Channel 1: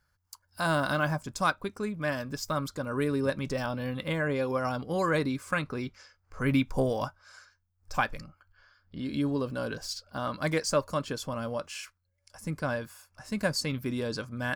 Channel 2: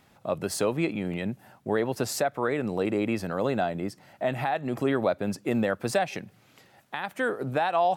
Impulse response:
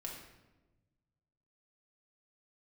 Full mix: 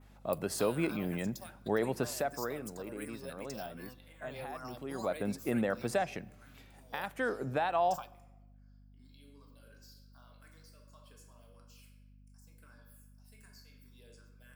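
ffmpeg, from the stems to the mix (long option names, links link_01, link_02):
-filter_complex "[0:a]aemphasis=mode=production:type=riaa,acompressor=threshold=-30dB:ratio=6,asplit=2[link_01][link_02];[link_02]afreqshift=-2.7[link_03];[link_01][link_03]amix=inputs=2:normalize=1,volume=-10.5dB,asplit=2[link_04][link_05];[link_05]volume=-11.5dB[link_06];[1:a]volume=5.5dB,afade=type=out:start_time=1.97:duration=0.76:silence=0.251189,afade=type=in:start_time=4.93:duration=0.27:silence=0.281838,asplit=3[link_07][link_08][link_09];[link_08]volume=-15.5dB[link_10];[link_09]apad=whole_len=641845[link_11];[link_04][link_11]sidechaingate=range=-33dB:threshold=-53dB:ratio=16:detection=peak[link_12];[2:a]atrim=start_sample=2205[link_13];[link_06][link_10]amix=inputs=2:normalize=0[link_14];[link_14][link_13]afir=irnorm=-1:irlink=0[link_15];[link_12][link_07][link_15]amix=inputs=3:normalize=0,adynamicequalizer=threshold=0.00178:dfrequency=4600:dqfactor=0.87:tfrequency=4600:tqfactor=0.87:attack=5:release=100:ratio=0.375:range=2.5:mode=cutabove:tftype=bell,aeval=exprs='val(0)+0.00141*(sin(2*PI*50*n/s)+sin(2*PI*2*50*n/s)/2+sin(2*PI*3*50*n/s)/3+sin(2*PI*4*50*n/s)/4+sin(2*PI*5*50*n/s)/5)':channel_layout=same"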